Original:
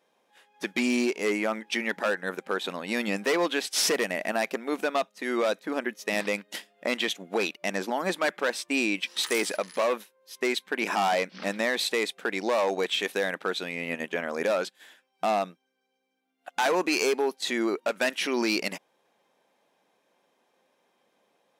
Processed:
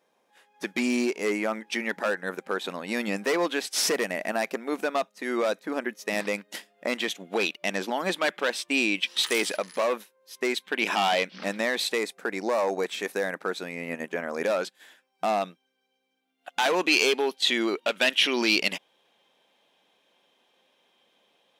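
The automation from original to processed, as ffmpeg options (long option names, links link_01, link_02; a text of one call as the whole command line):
ffmpeg -i in.wav -af "asetnsamples=nb_out_samples=441:pad=0,asendcmd='7.15 equalizer g 5.5;9.59 equalizer g -1;10.64 equalizer g 8.5;11.35 equalizer g 0;11.98 equalizer g -9;14.34 equalizer g -1;15.41 equalizer g 6;16.79 equalizer g 12.5',equalizer=frequency=3200:width_type=o:width=0.76:gain=-2.5" out.wav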